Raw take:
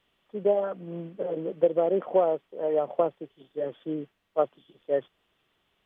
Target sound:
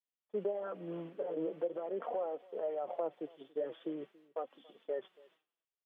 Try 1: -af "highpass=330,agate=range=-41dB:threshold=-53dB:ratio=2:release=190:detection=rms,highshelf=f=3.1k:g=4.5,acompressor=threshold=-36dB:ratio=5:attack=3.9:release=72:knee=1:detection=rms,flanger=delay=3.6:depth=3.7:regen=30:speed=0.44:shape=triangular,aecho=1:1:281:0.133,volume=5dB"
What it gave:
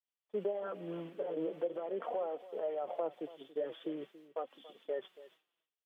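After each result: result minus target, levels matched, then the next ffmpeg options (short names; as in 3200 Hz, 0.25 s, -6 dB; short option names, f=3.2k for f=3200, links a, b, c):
4000 Hz band +5.0 dB; echo-to-direct +6.5 dB
-af "highpass=330,agate=range=-41dB:threshold=-53dB:ratio=2:release=190:detection=rms,highshelf=f=3.1k:g=-5.5,acompressor=threshold=-36dB:ratio=5:attack=3.9:release=72:knee=1:detection=rms,flanger=delay=3.6:depth=3.7:regen=30:speed=0.44:shape=triangular,aecho=1:1:281:0.133,volume=5dB"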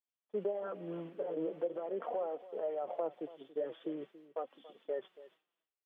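echo-to-direct +6.5 dB
-af "highpass=330,agate=range=-41dB:threshold=-53dB:ratio=2:release=190:detection=rms,highshelf=f=3.1k:g=-5.5,acompressor=threshold=-36dB:ratio=5:attack=3.9:release=72:knee=1:detection=rms,flanger=delay=3.6:depth=3.7:regen=30:speed=0.44:shape=triangular,aecho=1:1:281:0.0631,volume=5dB"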